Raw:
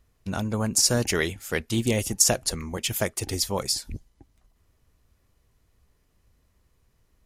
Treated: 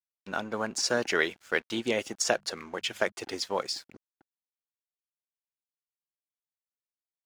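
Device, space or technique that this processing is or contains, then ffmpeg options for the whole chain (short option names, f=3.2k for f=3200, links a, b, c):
pocket radio on a weak battery: -filter_complex "[0:a]highpass=350,lowpass=4k,aeval=exprs='sgn(val(0))*max(abs(val(0))-0.00251,0)':c=same,equalizer=f=1.5k:t=o:w=0.35:g=5,asettb=1/sr,asplit=3[a][b][c];[a]atrim=end=2.184[d];[b]atrim=start=2.18:end=3.12,asetpts=PTS-STARTPTS,afade=t=in:d=0.004:c=qsin,afade=t=out:st=0.936:d=0.004:c=qsin,bandreject=f=50:t=h:w=6,bandreject=f=100:t=h:w=6,bandreject=f=150:t=h:w=6,bandreject=f=200:t=h:w=6[e];[c]atrim=start=3.116[f];[d][e]acrossfade=d=0.004:c1=hsin:c2=qsin[g];[g][f]acrossfade=d=0.004:c1=qsin:c2=hsin"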